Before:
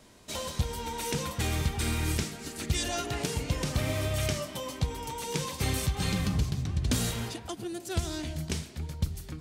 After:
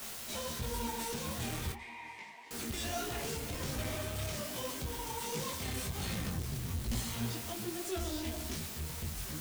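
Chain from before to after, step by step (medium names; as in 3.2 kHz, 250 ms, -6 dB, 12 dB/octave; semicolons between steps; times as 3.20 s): 6.59–7.14 s: comb filter that takes the minimum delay 0.95 ms; 7.84–8.55 s: comb 3 ms, depth 88%; in parallel at -2 dB: peak limiter -24 dBFS, peak gain reduction 9.5 dB; on the sum: vibrato 1.7 Hz 21 cents; word length cut 6-bit, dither triangular; 1.72–2.51 s: two resonant band-passes 1.4 kHz, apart 1.1 oct; saturation -28 dBFS, distortion -8 dB; on a send at -11 dB: reverberation RT60 0.35 s, pre-delay 4 ms; on the sum: detune thickener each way 45 cents; trim -2.5 dB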